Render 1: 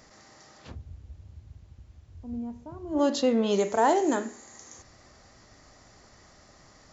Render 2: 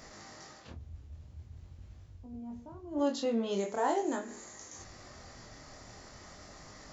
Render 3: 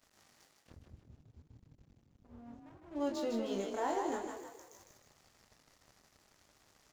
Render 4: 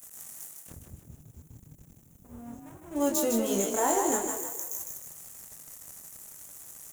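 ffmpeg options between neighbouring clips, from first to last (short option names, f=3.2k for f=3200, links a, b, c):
-af "areverse,acompressor=mode=upward:threshold=-31dB:ratio=2.5,areverse,flanger=delay=19.5:depth=6.6:speed=0.44,volume=-5dB"
-filter_complex "[0:a]aeval=exprs='sgn(val(0))*max(abs(val(0))-0.00398,0)':c=same,asplit=7[a][b][c][d][e][f][g];[b]adelay=155,afreqshift=36,volume=-5dB[h];[c]adelay=310,afreqshift=72,volume=-11.9dB[i];[d]adelay=465,afreqshift=108,volume=-18.9dB[j];[e]adelay=620,afreqshift=144,volume=-25.8dB[k];[f]adelay=775,afreqshift=180,volume=-32.7dB[l];[g]adelay=930,afreqshift=216,volume=-39.7dB[m];[a][h][i][j][k][l][m]amix=inputs=7:normalize=0,volume=-5dB"
-af "equalizer=f=160:t=o:w=0.45:g=5.5,aexciter=amount=13.5:drive=5:freq=6.9k,volume=8dB"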